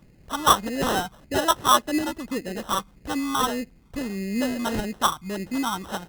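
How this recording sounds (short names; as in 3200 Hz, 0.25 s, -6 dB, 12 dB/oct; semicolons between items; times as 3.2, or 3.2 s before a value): phasing stages 8, 1.7 Hz, lowest notch 450–1100 Hz; aliases and images of a low sample rate 2300 Hz, jitter 0%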